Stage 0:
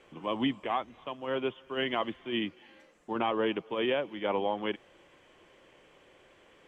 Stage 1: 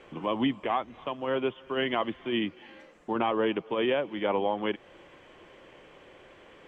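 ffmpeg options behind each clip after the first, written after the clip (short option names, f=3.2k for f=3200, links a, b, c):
-filter_complex "[0:a]lowpass=f=3.4k:p=1,asplit=2[a][b];[b]acompressor=threshold=-38dB:ratio=6,volume=2.5dB[c];[a][c]amix=inputs=2:normalize=0"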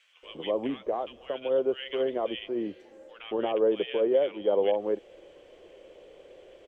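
-filter_complex "[0:a]equalizer=f=125:t=o:w=1:g=-10,equalizer=f=250:t=o:w=1:g=-6,equalizer=f=500:t=o:w=1:g=10,equalizer=f=1k:t=o:w=1:g=-10,equalizer=f=2k:t=o:w=1:g=-5,acrossover=split=1500[a][b];[a]adelay=230[c];[c][b]amix=inputs=2:normalize=0"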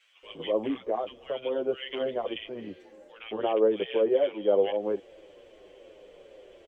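-filter_complex "[0:a]asplit=2[a][b];[b]adelay=8.2,afreqshift=-2.6[c];[a][c]amix=inputs=2:normalize=1,volume=3dB"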